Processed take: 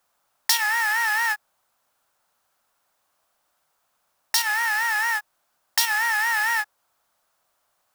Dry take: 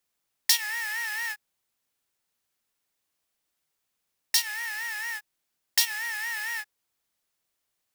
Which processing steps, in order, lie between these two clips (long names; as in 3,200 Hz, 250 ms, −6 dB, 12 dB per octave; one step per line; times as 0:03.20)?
flat-topped bell 920 Hz +11 dB
in parallel at −0.5 dB: compressor whose output falls as the input rises −29 dBFS